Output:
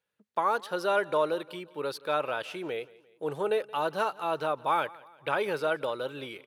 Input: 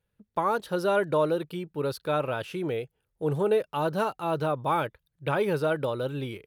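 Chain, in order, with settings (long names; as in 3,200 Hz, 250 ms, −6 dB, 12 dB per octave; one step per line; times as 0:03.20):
meter weighting curve A
on a send: repeating echo 174 ms, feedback 48%, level −22 dB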